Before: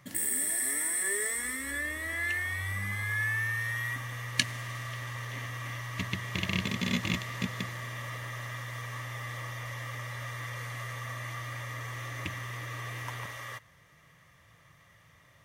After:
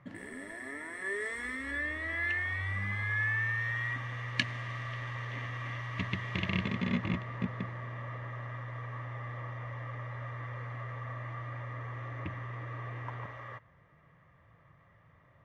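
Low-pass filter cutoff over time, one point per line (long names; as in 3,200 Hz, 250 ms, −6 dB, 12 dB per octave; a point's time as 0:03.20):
0:00.83 1,700 Hz
0:01.35 2,900 Hz
0:06.37 2,900 Hz
0:07.25 1,400 Hz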